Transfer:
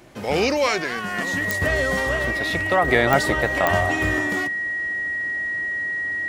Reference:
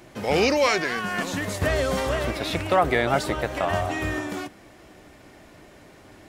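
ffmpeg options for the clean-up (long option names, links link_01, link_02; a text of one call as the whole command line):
ffmpeg -i in.wav -af "adeclick=threshold=4,bandreject=frequency=1900:width=30,asetnsamples=nb_out_samples=441:pad=0,asendcmd='2.88 volume volume -4dB',volume=0dB" out.wav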